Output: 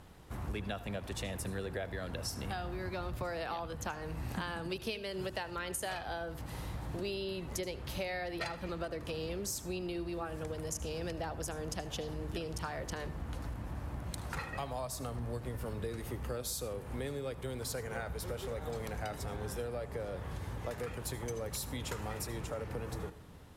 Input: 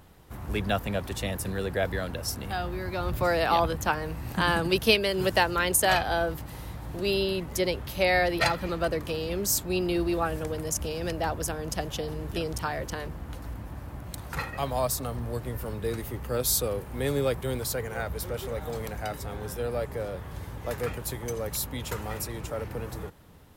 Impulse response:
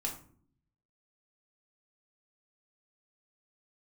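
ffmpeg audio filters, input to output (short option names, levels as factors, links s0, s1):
-filter_complex "[0:a]lowpass=11000,acompressor=threshold=0.02:ratio=12,asplit=2[s0][s1];[1:a]atrim=start_sample=2205,adelay=75[s2];[s1][s2]afir=irnorm=-1:irlink=0,volume=0.15[s3];[s0][s3]amix=inputs=2:normalize=0,volume=0.891"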